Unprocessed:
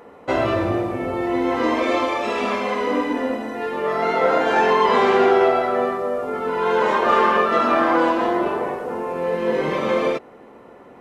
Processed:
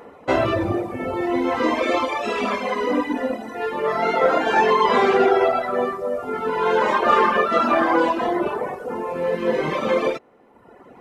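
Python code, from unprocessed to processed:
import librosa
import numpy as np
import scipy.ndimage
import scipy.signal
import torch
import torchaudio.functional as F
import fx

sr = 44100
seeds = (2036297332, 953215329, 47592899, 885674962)

y = fx.dereverb_blind(x, sr, rt60_s=1.2)
y = y * 10.0 ** (2.0 / 20.0)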